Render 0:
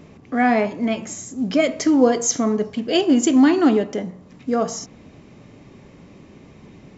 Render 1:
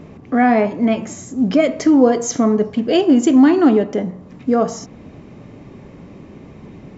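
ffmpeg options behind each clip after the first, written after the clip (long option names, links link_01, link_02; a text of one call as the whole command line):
ffmpeg -i in.wav -filter_complex "[0:a]highshelf=frequency=2400:gain=-9.5,asplit=2[link_01][link_02];[link_02]alimiter=limit=-14.5dB:level=0:latency=1:release=478,volume=1.5dB[link_03];[link_01][link_03]amix=inputs=2:normalize=0" out.wav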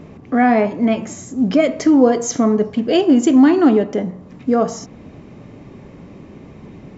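ffmpeg -i in.wav -af anull out.wav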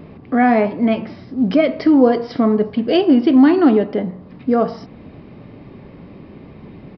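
ffmpeg -i in.wav -af "aresample=11025,aresample=44100" out.wav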